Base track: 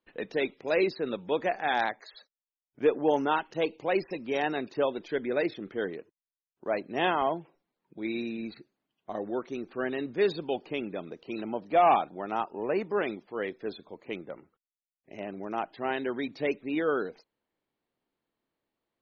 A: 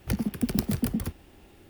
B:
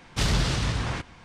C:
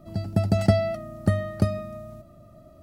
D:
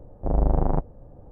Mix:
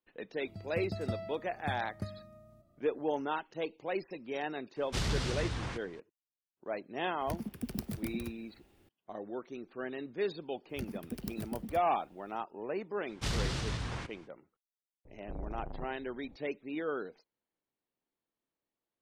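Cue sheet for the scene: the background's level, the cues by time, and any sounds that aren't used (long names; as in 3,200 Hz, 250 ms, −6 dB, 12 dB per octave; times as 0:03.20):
base track −8 dB
0:00.40: mix in C −17.5 dB
0:04.76: mix in B −9 dB
0:07.20: mix in A −11.5 dB
0:10.69: mix in A −14 dB
0:13.05: mix in B −9.5 dB, fades 0.05 s
0:15.05: mix in D −13 dB + downward compressor, threshold −23 dBFS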